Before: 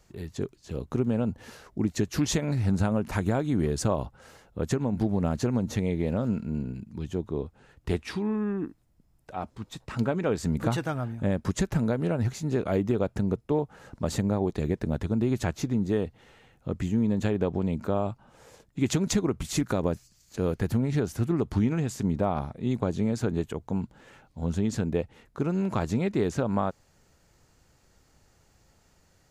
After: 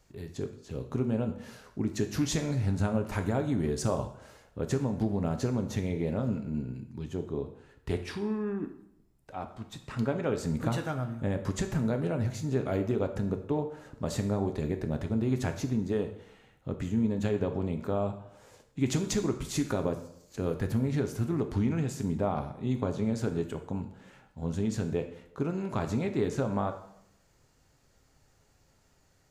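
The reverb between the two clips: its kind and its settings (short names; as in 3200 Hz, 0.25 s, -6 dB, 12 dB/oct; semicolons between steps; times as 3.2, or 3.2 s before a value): plate-style reverb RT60 0.74 s, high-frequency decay 0.85×, DRR 6 dB; gain -4 dB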